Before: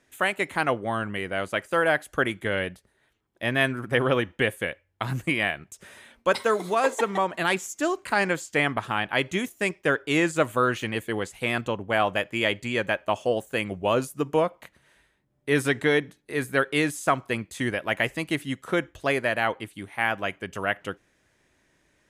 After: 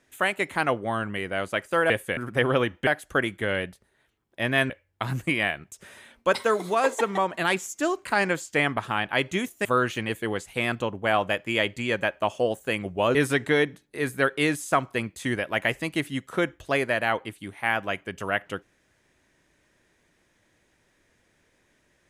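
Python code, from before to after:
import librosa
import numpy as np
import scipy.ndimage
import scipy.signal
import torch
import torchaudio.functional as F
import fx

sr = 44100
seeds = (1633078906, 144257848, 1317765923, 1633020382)

y = fx.edit(x, sr, fx.swap(start_s=1.9, length_s=1.83, other_s=4.43, other_length_s=0.27),
    fx.cut(start_s=9.65, length_s=0.86),
    fx.cut(start_s=14.01, length_s=1.49), tone=tone)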